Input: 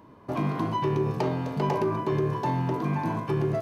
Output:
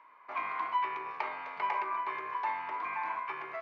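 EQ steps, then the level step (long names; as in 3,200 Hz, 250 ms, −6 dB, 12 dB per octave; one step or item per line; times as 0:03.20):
high-pass with resonance 1,100 Hz, resonance Q 2.3
high-frequency loss of the air 230 metres
parametric band 2,200 Hz +15 dB 0.39 octaves
−5.5 dB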